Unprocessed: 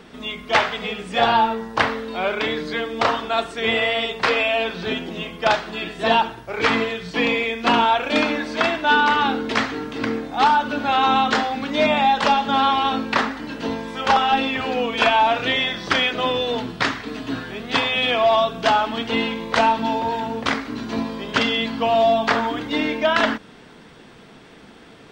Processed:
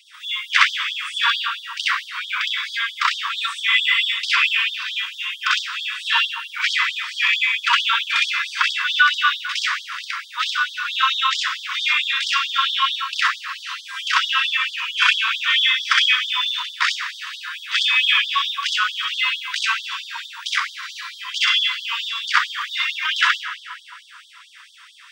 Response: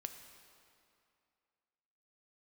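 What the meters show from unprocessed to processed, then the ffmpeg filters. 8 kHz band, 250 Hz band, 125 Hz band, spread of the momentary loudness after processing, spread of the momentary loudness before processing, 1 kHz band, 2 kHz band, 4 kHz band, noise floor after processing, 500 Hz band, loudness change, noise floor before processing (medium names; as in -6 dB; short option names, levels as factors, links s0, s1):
+6.5 dB, under -40 dB, under -40 dB, 12 LU, 9 LU, -6.0 dB, +4.0 dB, +6.0 dB, -44 dBFS, under -40 dB, +1.0 dB, -45 dBFS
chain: -filter_complex "[0:a]bandreject=f=4200:w=14,asplit=2[s0][s1];[1:a]atrim=start_sample=2205,asetrate=48510,aresample=44100,adelay=63[s2];[s1][s2]afir=irnorm=-1:irlink=0,volume=2[s3];[s0][s3]amix=inputs=2:normalize=0,afftfilt=real='re*gte(b*sr/1024,920*pow(3200/920,0.5+0.5*sin(2*PI*4.5*pts/sr)))':imag='im*gte(b*sr/1024,920*pow(3200/920,0.5+0.5*sin(2*PI*4.5*pts/sr)))':win_size=1024:overlap=0.75,volume=1.33"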